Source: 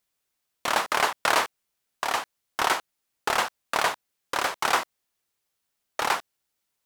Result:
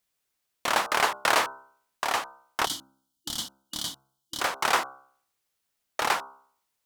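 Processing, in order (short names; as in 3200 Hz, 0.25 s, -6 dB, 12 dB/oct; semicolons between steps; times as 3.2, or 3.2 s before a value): de-hum 66.69 Hz, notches 23; spectral gain 2.65–4.41, 340–2900 Hz -22 dB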